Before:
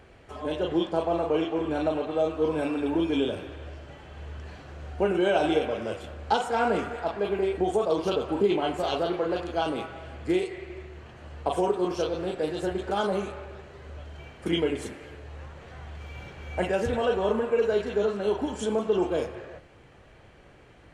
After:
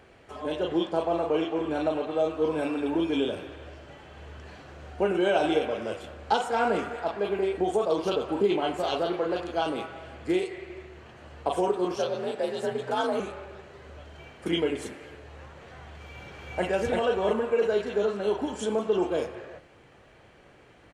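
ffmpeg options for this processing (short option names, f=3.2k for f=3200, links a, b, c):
-filter_complex "[0:a]asettb=1/sr,asplit=3[a][b][c];[a]atrim=end=11.964[d];[b]atrim=start=11.96:end=13.2,asetpts=PTS-STARTPTS,afade=t=in:d=0.004:c=qsin,afade=t=out:st=1.236:d=0.004:c=qsin,afreqshift=53[e];[c]atrim=start=13.196[f];[d][e]acrossfade=d=0.004:c1=hsin:c2=qsin[g];[g][f]acrossfade=d=0.004:c1=qsin:c2=hsin,asplit=2[h][i];[i]afade=t=in:st=15.97:d=0.01,afade=t=out:st=16.65:d=0.01,aecho=0:1:340|680|1020|1360|1700|2040|2380:0.749894|0.374947|0.187474|0.0937368|0.0468684|0.0234342|0.0117171[j];[h][j]amix=inputs=2:normalize=0,lowshelf=f=100:g=-9.5"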